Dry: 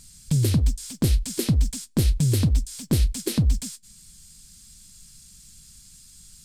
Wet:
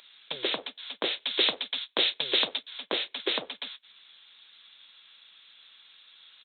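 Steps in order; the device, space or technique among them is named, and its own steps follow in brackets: 1.2–2.63 high shelf 3600 Hz +12 dB; musical greeting card (downsampling 8000 Hz; HPF 520 Hz 24 dB/oct; bell 3800 Hz +8 dB 0.41 oct); gain +7.5 dB

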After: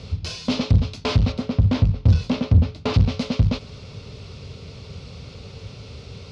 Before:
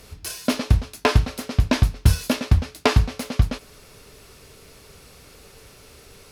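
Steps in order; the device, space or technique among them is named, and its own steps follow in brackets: 1.32–2.94 high shelf 2200 Hz -10 dB; guitar amplifier (tube stage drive 26 dB, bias 0.3; tone controls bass +14 dB, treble +13 dB; speaker cabinet 84–4100 Hz, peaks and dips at 98 Hz +5 dB, 320 Hz -5 dB, 520 Hz +4 dB, 1700 Hz -9 dB); gain +4 dB

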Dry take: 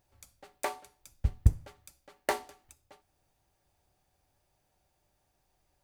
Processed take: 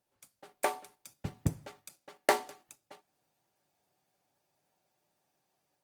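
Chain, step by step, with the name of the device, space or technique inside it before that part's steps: video call (HPF 140 Hz 24 dB/oct; AGC gain up to 4 dB; gate -56 dBFS, range -6 dB; Opus 24 kbps 48000 Hz)

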